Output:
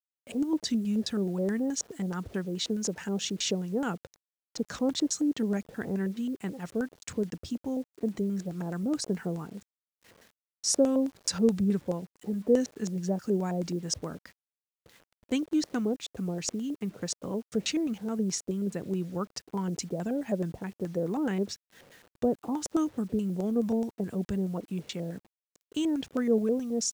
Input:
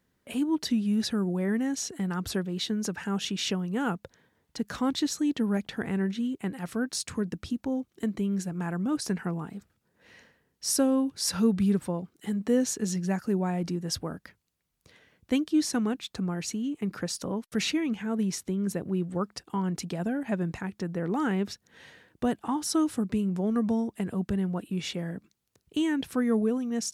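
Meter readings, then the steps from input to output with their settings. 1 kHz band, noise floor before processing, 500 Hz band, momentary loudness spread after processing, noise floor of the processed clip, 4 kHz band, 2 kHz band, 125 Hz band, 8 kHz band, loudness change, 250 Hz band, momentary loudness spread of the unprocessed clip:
−4.5 dB, −75 dBFS, +1.5 dB, 9 LU, below −85 dBFS, −2.0 dB, −5.0 dB, −2.5 dB, 0.0 dB, −1.5 dB, −2.0 dB, 8 LU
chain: auto-filter low-pass square 4.7 Hz 540–7,100 Hz
bit reduction 9 bits
level −3 dB

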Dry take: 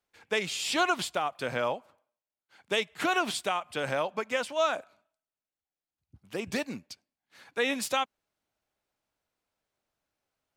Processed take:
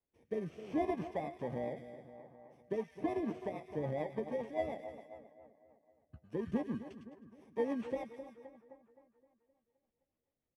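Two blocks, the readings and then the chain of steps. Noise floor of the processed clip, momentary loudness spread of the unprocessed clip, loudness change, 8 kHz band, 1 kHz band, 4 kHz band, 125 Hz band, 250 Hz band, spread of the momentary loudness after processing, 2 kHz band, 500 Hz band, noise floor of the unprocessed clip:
below −85 dBFS, 11 LU, −9.0 dB, below −30 dB, −12.5 dB, −28.0 dB, 0.0 dB, −1.0 dB, 18 LU, −20.5 dB, −6.0 dB, below −85 dBFS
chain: samples in bit-reversed order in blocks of 32 samples
parametric band 4,900 Hz −13 dB 0.25 octaves
double-tracking delay 13 ms −11.5 dB
echo with a time of its own for lows and highs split 1,600 Hz, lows 260 ms, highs 104 ms, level −13 dB
rotating-speaker cabinet horn 0.7 Hz, later 7 Hz, at 0:02.41
de-essing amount 90%
head-to-tape spacing loss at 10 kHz 29 dB
level +1.5 dB

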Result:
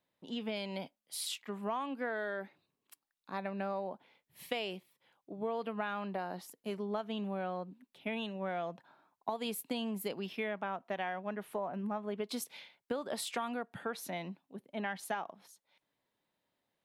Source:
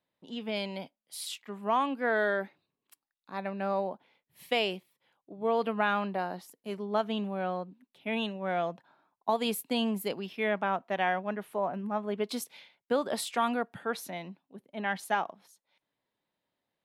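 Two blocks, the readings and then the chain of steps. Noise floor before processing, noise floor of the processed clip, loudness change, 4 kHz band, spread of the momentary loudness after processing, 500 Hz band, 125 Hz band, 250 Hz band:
below −85 dBFS, below −85 dBFS, −7.0 dB, −5.5 dB, 7 LU, −7.0 dB, −4.0 dB, −5.5 dB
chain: downward compressor 5 to 1, threshold −35 dBFS, peak gain reduction 11.5 dB
level +1 dB

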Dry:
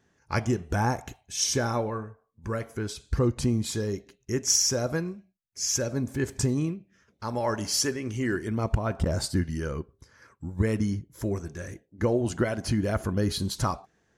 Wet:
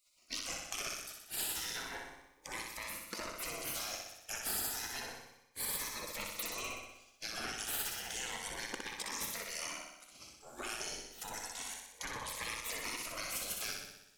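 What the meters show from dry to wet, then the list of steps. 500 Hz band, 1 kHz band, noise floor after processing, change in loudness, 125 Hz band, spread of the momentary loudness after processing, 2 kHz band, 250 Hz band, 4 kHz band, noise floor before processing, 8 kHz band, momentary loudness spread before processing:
−19.5 dB, −10.5 dB, −65 dBFS, −11.5 dB, −30.0 dB, 9 LU, −4.5 dB, −24.5 dB, −7.0 dB, −71 dBFS, −9.0 dB, 13 LU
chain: one-sided soft clipper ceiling −24.5 dBFS
low-shelf EQ 430 Hz −11.5 dB
gate on every frequency bin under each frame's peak −20 dB weak
downward compressor 5 to 1, threshold −50 dBFS, peak gain reduction 15.5 dB
on a send: flutter between parallel walls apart 10.6 metres, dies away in 0.91 s
on the sum: phaser whose notches keep moving one way rising 0.31 Hz
level +13 dB

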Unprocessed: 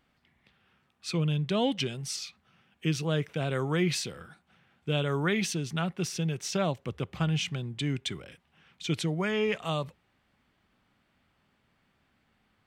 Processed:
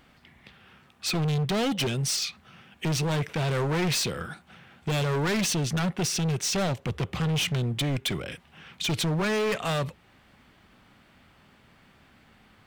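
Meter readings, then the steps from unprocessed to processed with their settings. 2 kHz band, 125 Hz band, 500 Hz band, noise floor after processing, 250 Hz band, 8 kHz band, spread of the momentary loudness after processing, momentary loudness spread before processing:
+3.5 dB, +3.5 dB, +2.0 dB, −59 dBFS, +2.0 dB, +7.5 dB, 8 LU, 9 LU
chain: in parallel at −2 dB: downward compressor, threshold −42 dBFS, peak gain reduction 18 dB
on the sum: gain into a clipping stage and back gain 32 dB
level +8 dB

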